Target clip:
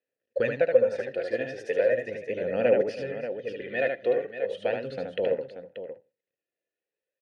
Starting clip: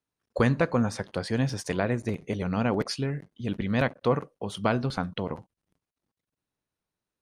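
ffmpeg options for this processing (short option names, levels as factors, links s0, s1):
-filter_complex "[0:a]asplit=2[s0][s1];[s1]aecho=0:1:82|164:0.0708|0.0234[s2];[s0][s2]amix=inputs=2:normalize=0,aphaser=in_gain=1:out_gain=1:delay=2.9:decay=0.5:speed=0.38:type=sinusoidal,asplit=3[s3][s4][s5];[s3]bandpass=f=530:t=q:w=8,volume=1[s6];[s4]bandpass=f=1840:t=q:w=8,volume=0.501[s7];[s5]bandpass=f=2480:t=q:w=8,volume=0.355[s8];[s6][s7][s8]amix=inputs=3:normalize=0,asplit=2[s9][s10];[s10]aecho=0:1:75|322|583:0.596|0.126|0.299[s11];[s9][s11]amix=inputs=2:normalize=0,volume=2.51"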